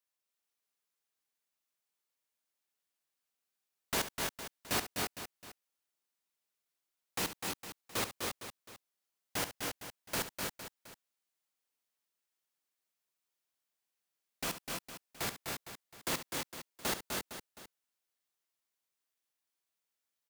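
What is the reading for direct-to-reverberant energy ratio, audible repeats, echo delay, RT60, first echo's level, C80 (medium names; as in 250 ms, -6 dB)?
no reverb, 4, 69 ms, no reverb, -12.0 dB, no reverb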